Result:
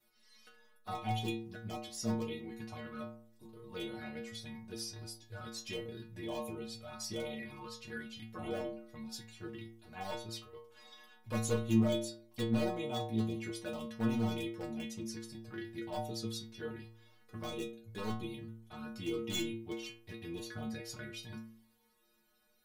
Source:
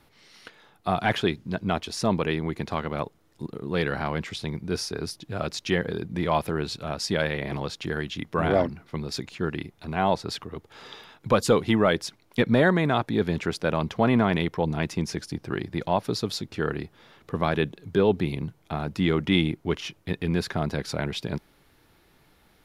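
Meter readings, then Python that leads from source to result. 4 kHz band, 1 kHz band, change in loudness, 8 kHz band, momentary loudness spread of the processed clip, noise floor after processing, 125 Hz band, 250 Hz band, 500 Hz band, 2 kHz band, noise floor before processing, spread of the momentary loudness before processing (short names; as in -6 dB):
-11.5 dB, -16.0 dB, -13.0 dB, -7.0 dB, 13 LU, -70 dBFS, -13.0 dB, -11.0 dB, -15.0 dB, -17.0 dB, -62 dBFS, 12 LU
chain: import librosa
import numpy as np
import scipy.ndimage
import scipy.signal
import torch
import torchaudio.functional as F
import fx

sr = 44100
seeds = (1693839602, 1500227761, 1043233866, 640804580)

y = fx.wow_flutter(x, sr, seeds[0], rate_hz=2.1, depth_cents=24.0)
y = fx.env_flanger(y, sr, rest_ms=5.1, full_db=-22.0)
y = 10.0 ** (-14.0 / 20.0) * (np.abs((y / 10.0 ** (-14.0 / 20.0) + 3.0) % 4.0 - 2.0) - 1.0)
y = fx.high_shelf(y, sr, hz=7100.0, db=11.5)
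y = fx.stiff_resonator(y, sr, f0_hz=110.0, decay_s=0.7, stiffness=0.008)
y = y * librosa.db_to_amplitude(2.0)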